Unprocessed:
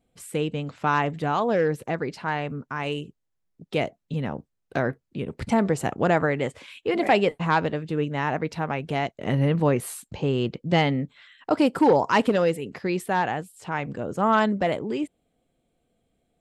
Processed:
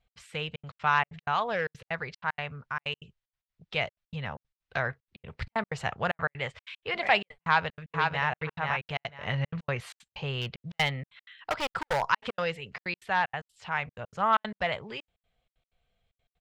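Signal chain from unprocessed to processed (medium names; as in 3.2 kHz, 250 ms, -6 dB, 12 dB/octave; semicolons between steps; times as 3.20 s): distance through air 210 m; 10.41–12.02 s: hard clipper -16.5 dBFS, distortion -20 dB; amplifier tone stack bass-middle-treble 10-0-10; 7.42–8.27 s: echo throw 490 ms, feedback 20%, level -3.5 dB; trance gate "x.xxxxx.x.xxx." 189 bpm -60 dB; trim +8.5 dB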